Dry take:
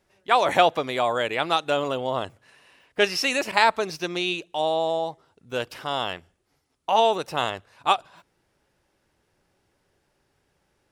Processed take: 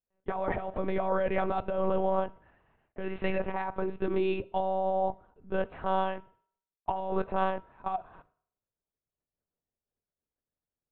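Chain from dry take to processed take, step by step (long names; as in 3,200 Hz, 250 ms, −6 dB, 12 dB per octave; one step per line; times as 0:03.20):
low-pass filter 1,400 Hz 12 dB per octave
downward expander −54 dBFS
high-pass filter 120 Hz
spectral tilt −1.5 dB per octave
compressor whose output falls as the input rises −26 dBFS, ratio −1
one-pitch LPC vocoder at 8 kHz 190 Hz
on a send: convolution reverb RT60 0.60 s, pre-delay 4 ms, DRR 16.5 dB
on the sum: level −2.5 dB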